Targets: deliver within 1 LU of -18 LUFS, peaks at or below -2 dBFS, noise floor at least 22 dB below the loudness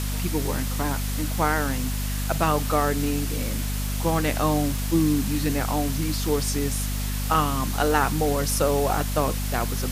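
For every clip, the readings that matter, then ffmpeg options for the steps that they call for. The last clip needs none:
hum 50 Hz; harmonics up to 250 Hz; hum level -25 dBFS; noise floor -27 dBFS; noise floor target -47 dBFS; loudness -24.5 LUFS; peak -6.5 dBFS; loudness target -18.0 LUFS
-> -af "bandreject=f=50:t=h:w=6,bandreject=f=100:t=h:w=6,bandreject=f=150:t=h:w=6,bandreject=f=200:t=h:w=6,bandreject=f=250:t=h:w=6"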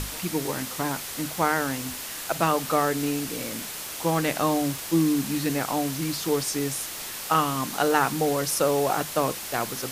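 hum none; noise floor -36 dBFS; noise floor target -48 dBFS
-> -af "afftdn=nr=12:nf=-36"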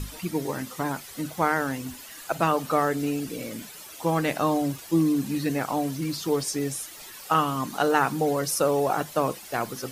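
noise floor -43 dBFS; noise floor target -49 dBFS
-> -af "afftdn=nr=6:nf=-43"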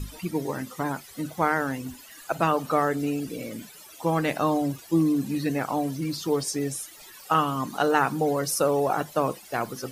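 noise floor -47 dBFS; noise floor target -49 dBFS
-> -af "afftdn=nr=6:nf=-47"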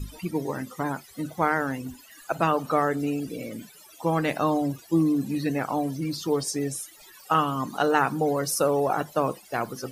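noise floor -51 dBFS; loudness -26.5 LUFS; peak -7.0 dBFS; loudness target -18.0 LUFS
-> -af "volume=8.5dB,alimiter=limit=-2dB:level=0:latency=1"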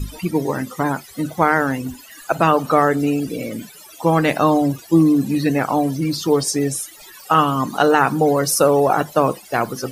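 loudness -18.5 LUFS; peak -2.0 dBFS; noise floor -42 dBFS

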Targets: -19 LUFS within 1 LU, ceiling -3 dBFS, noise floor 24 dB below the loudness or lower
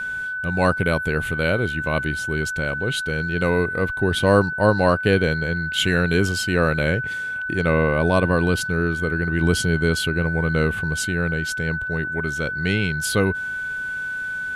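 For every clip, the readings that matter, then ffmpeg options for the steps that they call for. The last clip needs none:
steady tone 1500 Hz; tone level -25 dBFS; loudness -21.5 LUFS; peak -3.5 dBFS; loudness target -19.0 LUFS
-> -af "bandreject=f=1.5k:w=30"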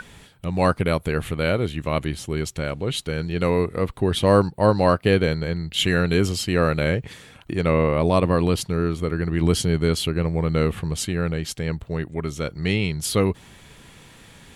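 steady tone none; loudness -22.5 LUFS; peak -4.0 dBFS; loudness target -19.0 LUFS
-> -af "volume=3.5dB,alimiter=limit=-3dB:level=0:latency=1"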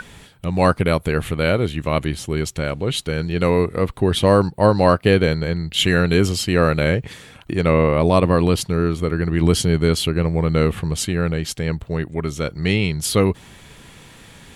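loudness -19.0 LUFS; peak -3.0 dBFS; noise floor -45 dBFS

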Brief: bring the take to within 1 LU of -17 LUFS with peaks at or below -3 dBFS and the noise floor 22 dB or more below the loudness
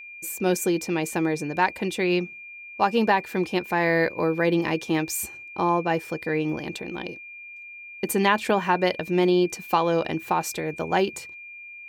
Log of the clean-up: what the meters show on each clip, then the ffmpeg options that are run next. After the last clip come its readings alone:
steady tone 2400 Hz; tone level -39 dBFS; loudness -24.5 LUFS; peak -6.5 dBFS; loudness target -17.0 LUFS
-> -af "bandreject=f=2.4k:w=30"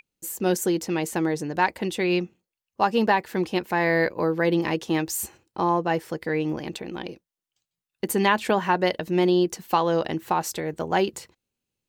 steady tone none; loudness -24.5 LUFS; peak -7.0 dBFS; loudness target -17.0 LUFS
-> -af "volume=7.5dB,alimiter=limit=-3dB:level=0:latency=1"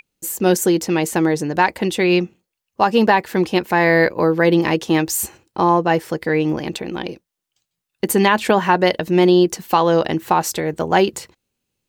loudness -17.5 LUFS; peak -3.0 dBFS; noise floor -81 dBFS

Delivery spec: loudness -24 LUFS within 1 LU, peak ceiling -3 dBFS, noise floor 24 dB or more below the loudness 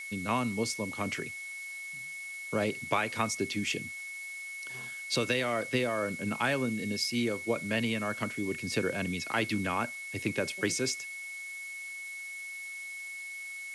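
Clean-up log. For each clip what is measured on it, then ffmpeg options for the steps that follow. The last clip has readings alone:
steady tone 2200 Hz; tone level -39 dBFS; noise floor -42 dBFS; noise floor target -57 dBFS; loudness -33.0 LUFS; peak -13.5 dBFS; loudness target -24.0 LUFS
-> -af "bandreject=f=2.2k:w=30"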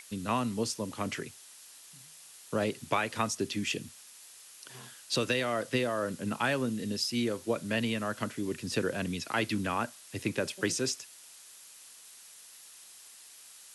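steady tone none; noise floor -53 dBFS; noise floor target -57 dBFS
-> -af "afftdn=nr=6:nf=-53"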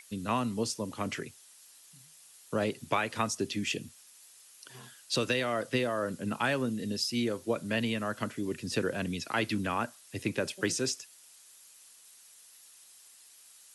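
noise floor -57 dBFS; loudness -32.5 LUFS; peak -14.5 dBFS; loudness target -24.0 LUFS
-> -af "volume=8.5dB"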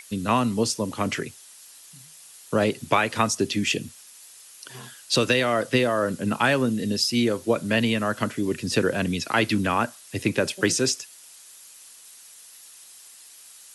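loudness -24.0 LUFS; peak -6.0 dBFS; noise floor -48 dBFS

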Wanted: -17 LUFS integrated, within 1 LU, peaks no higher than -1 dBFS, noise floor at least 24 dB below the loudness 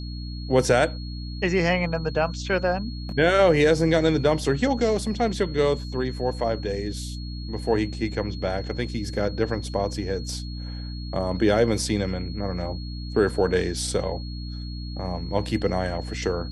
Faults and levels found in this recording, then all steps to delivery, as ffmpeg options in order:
hum 60 Hz; harmonics up to 300 Hz; hum level -31 dBFS; steady tone 4300 Hz; tone level -42 dBFS; loudness -25.0 LUFS; peak -6.5 dBFS; loudness target -17.0 LUFS
-> -af "bandreject=f=60:t=h:w=4,bandreject=f=120:t=h:w=4,bandreject=f=180:t=h:w=4,bandreject=f=240:t=h:w=4,bandreject=f=300:t=h:w=4"
-af "bandreject=f=4.3k:w=30"
-af "volume=8dB,alimiter=limit=-1dB:level=0:latency=1"

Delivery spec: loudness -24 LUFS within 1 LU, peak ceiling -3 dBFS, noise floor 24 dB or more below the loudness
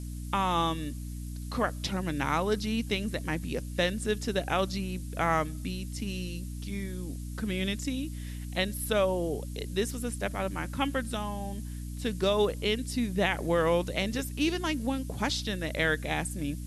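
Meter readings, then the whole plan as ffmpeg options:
hum 60 Hz; harmonics up to 300 Hz; hum level -35 dBFS; noise floor -38 dBFS; noise floor target -55 dBFS; loudness -31.0 LUFS; peak -13.5 dBFS; loudness target -24.0 LUFS
-> -af "bandreject=f=60:t=h:w=4,bandreject=f=120:t=h:w=4,bandreject=f=180:t=h:w=4,bandreject=f=240:t=h:w=4,bandreject=f=300:t=h:w=4"
-af "afftdn=nr=17:nf=-38"
-af "volume=7dB"

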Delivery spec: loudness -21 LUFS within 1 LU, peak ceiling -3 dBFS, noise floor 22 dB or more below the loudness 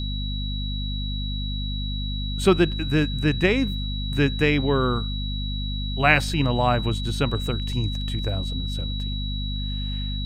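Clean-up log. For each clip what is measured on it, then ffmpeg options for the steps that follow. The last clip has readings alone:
hum 50 Hz; harmonics up to 250 Hz; hum level -26 dBFS; steady tone 3900 Hz; tone level -33 dBFS; loudness -24.5 LUFS; peak -3.5 dBFS; loudness target -21.0 LUFS
-> -af "bandreject=f=50:t=h:w=6,bandreject=f=100:t=h:w=6,bandreject=f=150:t=h:w=6,bandreject=f=200:t=h:w=6,bandreject=f=250:t=h:w=6"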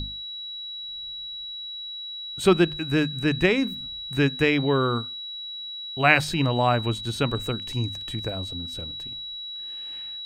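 hum none; steady tone 3900 Hz; tone level -33 dBFS
-> -af "bandreject=f=3.9k:w=30"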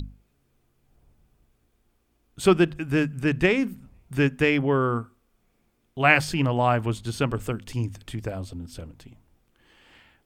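steady tone none; loudness -24.0 LUFS; peak -3.0 dBFS; loudness target -21.0 LUFS
-> -af "volume=3dB,alimiter=limit=-3dB:level=0:latency=1"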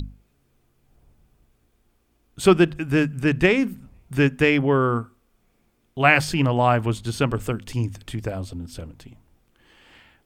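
loudness -21.5 LUFS; peak -3.0 dBFS; noise floor -66 dBFS

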